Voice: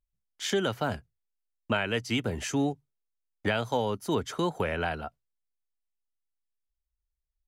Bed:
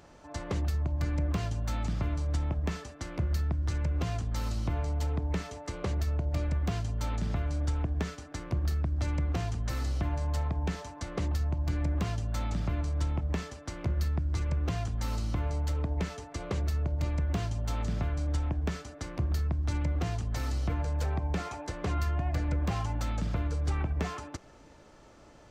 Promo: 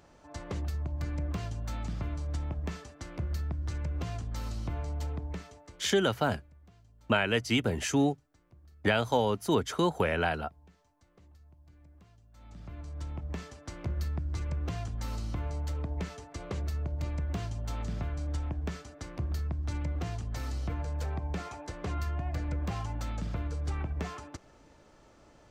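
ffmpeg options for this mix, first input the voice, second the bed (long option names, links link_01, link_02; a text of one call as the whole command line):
ffmpeg -i stem1.wav -i stem2.wav -filter_complex "[0:a]adelay=5400,volume=1.5dB[link_01];[1:a]volume=20dB,afade=type=out:start_time=5.05:duration=0.9:silence=0.0668344,afade=type=in:start_time=12.32:duration=1.37:silence=0.0630957[link_02];[link_01][link_02]amix=inputs=2:normalize=0" out.wav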